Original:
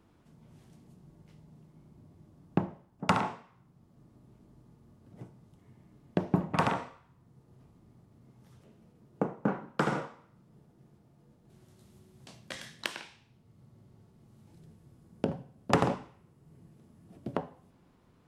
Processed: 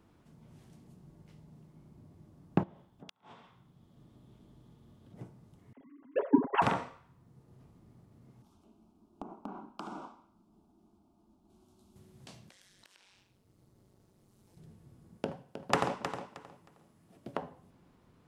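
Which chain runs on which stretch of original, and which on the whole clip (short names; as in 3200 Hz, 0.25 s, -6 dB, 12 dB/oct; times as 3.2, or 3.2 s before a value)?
2.63–5.14 bell 3400 Hz +12 dB 0.36 oct + flipped gate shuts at -17 dBFS, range -41 dB + compressor 3:1, threshold -52 dBFS
5.73–6.62 sine-wave speech + treble ducked by the level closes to 1000 Hz, closed at -22.5 dBFS + comb 7.3 ms, depth 56%
8.42–11.96 high shelf 5100 Hz -6.5 dB + compressor, threshold -35 dBFS + fixed phaser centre 500 Hz, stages 6
12.49–14.57 tone controls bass -4 dB, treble +7 dB + AM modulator 190 Hz, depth 75% + compressor 8:1, threshold -58 dBFS
15.17–17.42 low shelf 390 Hz -10.5 dB + feedback echo 0.313 s, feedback 22%, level -9 dB
whole clip: dry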